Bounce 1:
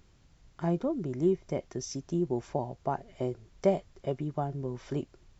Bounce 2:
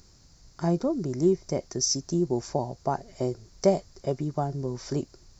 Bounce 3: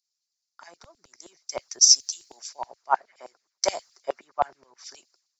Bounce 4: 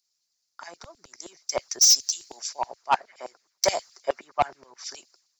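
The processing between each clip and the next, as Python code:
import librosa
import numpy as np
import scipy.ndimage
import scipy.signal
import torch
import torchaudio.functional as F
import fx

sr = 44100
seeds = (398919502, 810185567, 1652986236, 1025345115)

y1 = fx.high_shelf_res(x, sr, hz=3900.0, db=7.0, q=3.0)
y1 = y1 * 10.0 ** (4.0 / 20.0)
y2 = fx.hpss(y1, sr, part='harmonic', gain_db=-13)
y2 = fx.filter_lfo_highpass(y2, sr, shape='saw_down', hz=9.5, low_hz=720.0, high_hz=3800.0, q=1.5)
y2 = fx.band_widen(y2, sr, depth_pct=100)
y2 = y2 * 10.0 ** (3.5 / 20.0)
y3 = 10.0 ** (-18.5 / 20.0) * np.tanh(y2 / 10.0 ** (-18.5 / 20.0))
y3 = y3 * 10.0 ** (6.0 / 20.0)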